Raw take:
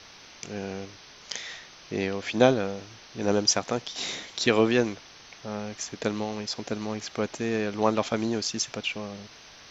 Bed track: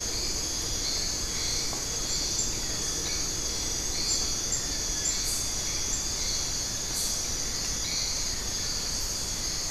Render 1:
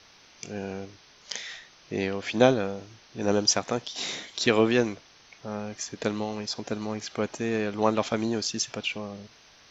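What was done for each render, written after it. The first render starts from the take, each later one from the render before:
noise reduction from a noise print 6 dB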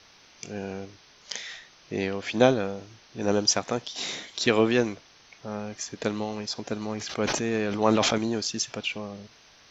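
0:06.97–0:08.18: level that may fall only so fast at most 23 dB per second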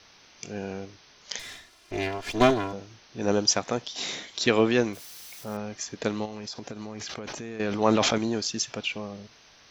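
0:01.39–0:02.73: lower of the sound and its delayed copy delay 2.9 ms
0:04.93–0:05.57: spike at every zero crossing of −37.5 dBFS
0:06.25–0:07.60: downward compressor 12 to 1, threshold −32 dBFS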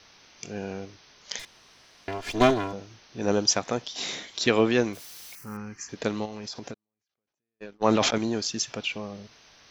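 0:01.45–0:02.08: fill with room tone
0:05.35–0:05.89: phaser with its sweep stopped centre 1,500 Hz, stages 4
0:06.74–0:08.14: noise gate −26 dBFS, range −51 dB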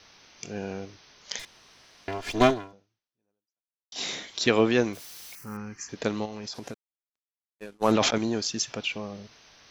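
0:02.47–0:03.92: fade out exponential
0:06.54–0:07.92: variable-slope delta modulation 64 kbit/s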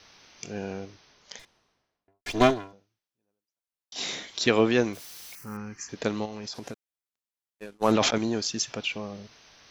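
0:00.61–0:02.26: fade out and dull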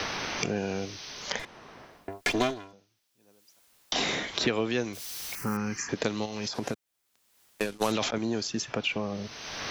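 multiband upward and downward compressor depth 100%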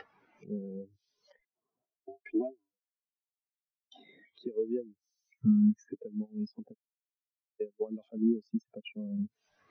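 downward compressor 5 to 1, threshold −38 dBFS, peak gain reduction 15.5 dB
every bin expanded away from the loudest bin 4 to 1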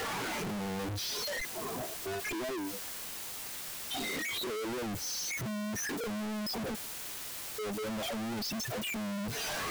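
sign of each sample alone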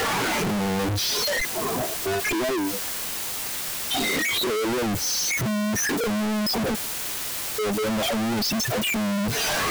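level +11.5 dB

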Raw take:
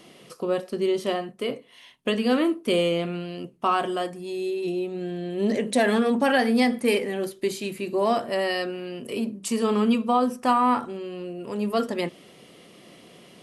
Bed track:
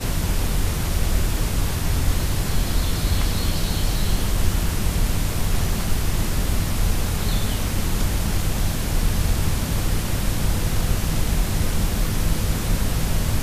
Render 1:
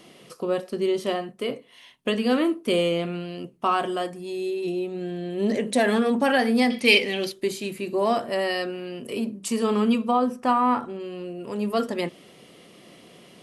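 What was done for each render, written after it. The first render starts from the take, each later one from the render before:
0:06.70–0:07.32: flat-topped bell 3,600 Hz +13 dB
0:10.11–0:11.00: high-shelf EQ 4,000 Hz −8.5 dB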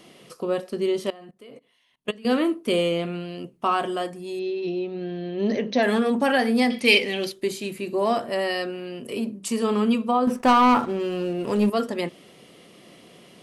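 0:01.10–0:02.25: output level in coarse steps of 22 dB
0:04.39–0:05.83: linear-phase brick-wall low-pass 6,400 Hz
0:10.27–0:11.70: leveller curve on the samples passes 2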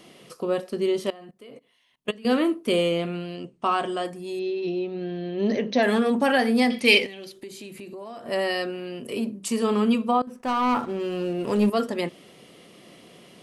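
0:03.36–0:04.05: elliptic low-pass filter 8,900 Hz, stop band 50 dB
0:07.06–0:08.26: downward compressor 5 to 1, threshold −37 dBFS
0:10.22–0:11.63: fade in equal-power, from −22.5 dB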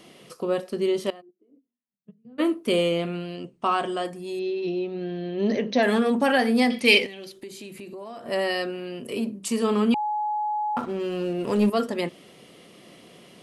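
0:01.20–0:02.38: resonant band-pass 400 Hz → 130 Hz, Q 13
0:09.94–0:10.77: beep over 844 Hz −23.5 dBFS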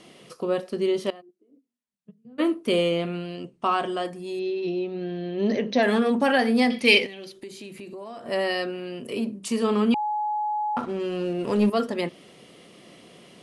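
Butterworth low-pass 11,000 Hz 48 dB per octave
dynamic equaliser 7,900 Hz, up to −5 dB, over −58 dBFS, Q 2.8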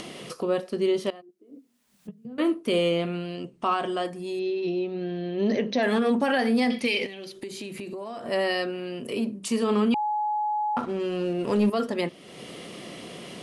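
upward compression, threshold −30 dBFS
brickwall limiter −15 dBFS, peak gain reduction 11.5 dB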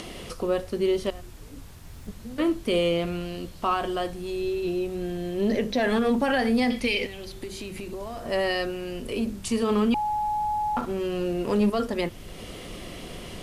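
mix in bed track −22.5 dB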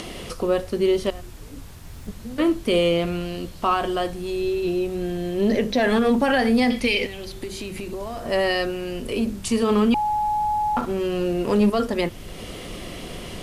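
level +4 dB

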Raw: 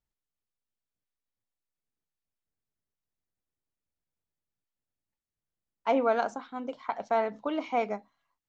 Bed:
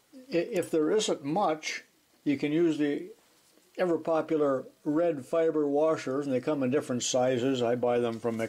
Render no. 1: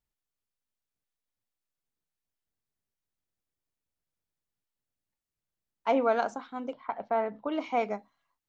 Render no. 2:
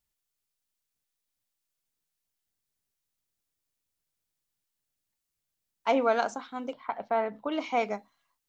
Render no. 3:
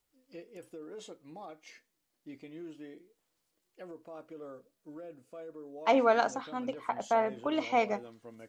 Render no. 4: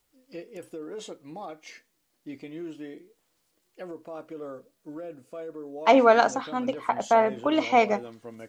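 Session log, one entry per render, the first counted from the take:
0:06.73–0:07.52: high-frequency loss of the air 400 metres
high-shelf EQ 2,600 Hz +8.5 dB
mix in bed −19.5 dB
level +7.5 dB

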